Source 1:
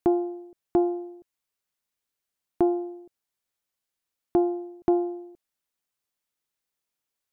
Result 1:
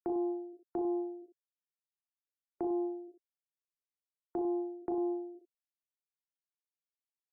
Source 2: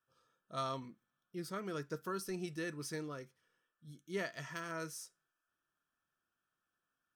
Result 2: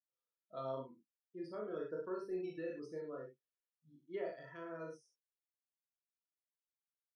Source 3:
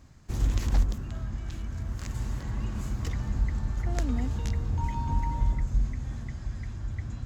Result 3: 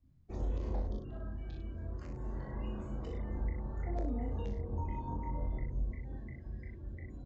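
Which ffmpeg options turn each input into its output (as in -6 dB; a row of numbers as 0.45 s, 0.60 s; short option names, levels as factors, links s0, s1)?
-filter_complex "[0:a]afftdn=nr=26:nf=-46,equalizer=f=1400:t=o:w=2.3:g=-12,asplit=2[s0][s1];[s1]adelay=38,volume=0.75[s2];[s0][s2]amix=inputs=2:normalize=0,aecho=1:1:24|60:0.596|0.473,acrossover=split=950[s3][s4];[s4]acompressor=threshold=0.00112:ratio=20[s5];[s3][s5]amix=inputs=2:normalize=0,acrossover=split=370 4100:gain=0.1 1 0.0794[s6][s7][s8];[s6][s7][s8]amix=inputs=3:normalize=0,alimiter=level_in=2.51:limit=0.0631:level=0:latency=1:release=98,volume=0.398,volume=1.78"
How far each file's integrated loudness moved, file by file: -9.5 LU, -2.5 LU, -9.0 LU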